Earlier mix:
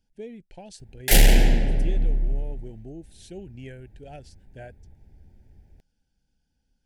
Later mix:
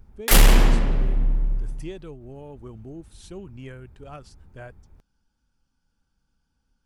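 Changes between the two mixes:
background: entry -0.80 s; master: remove Chebyshev band-stop 770–1700 Hz, order 2

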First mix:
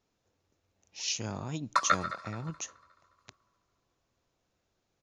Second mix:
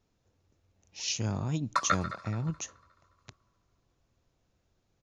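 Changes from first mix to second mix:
background: send -10.5 dB; master: add bass shelf 190 Hz +10.5 dB

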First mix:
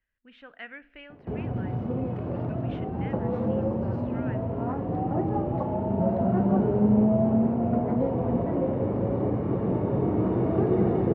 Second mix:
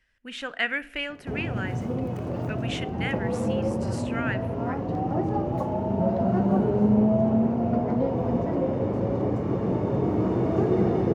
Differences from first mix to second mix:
speech +12.0 dB; master: remove distance through air 350 m

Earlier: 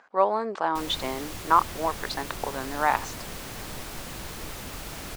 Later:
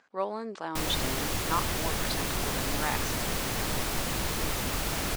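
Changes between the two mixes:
speech: add peaking EQ 890 Hz -11.5 dB 2.5 oct; background +7.0 dB

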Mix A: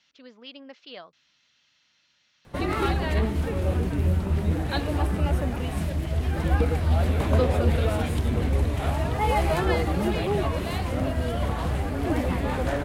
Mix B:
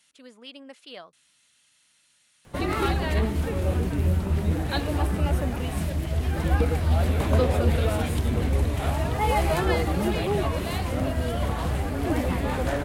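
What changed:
speech: remove steep low-pass 5.9 kHz 48 dB/octave; background: add treble shelf 6.1 kHz +5 dB

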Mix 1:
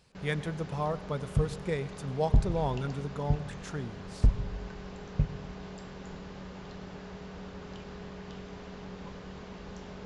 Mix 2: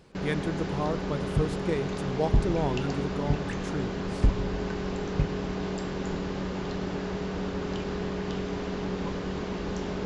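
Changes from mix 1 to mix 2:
first sound +10.0 dB; master: add peaking EQ 320 Hz +9.5 dB 0.52 oct

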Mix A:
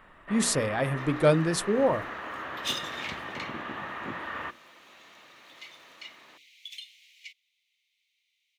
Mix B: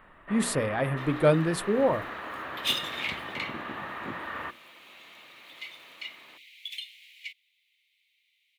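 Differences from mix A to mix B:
second sound +7.0 dB; master: add peaking EQ 6 kHz -11 dB 0.88 oct

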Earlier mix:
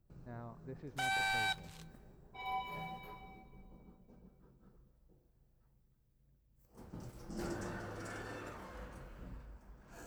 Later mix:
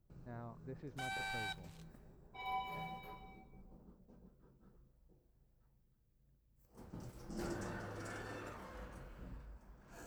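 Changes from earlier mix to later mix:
second sound -8.0 dB; reverb: off

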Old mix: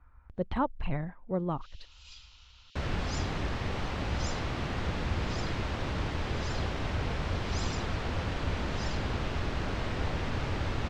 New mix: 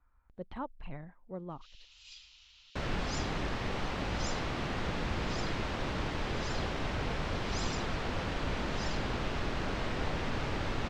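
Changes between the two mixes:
speech -10.0 dB; master: add peaking EQ 80 Hz -7.5 dB 1.1 oct

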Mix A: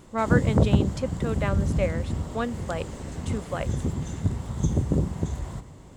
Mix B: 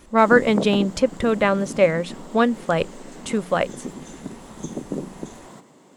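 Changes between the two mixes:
speech +10.5 dB; background: add high-pass 210 Hz 24 dB/octave

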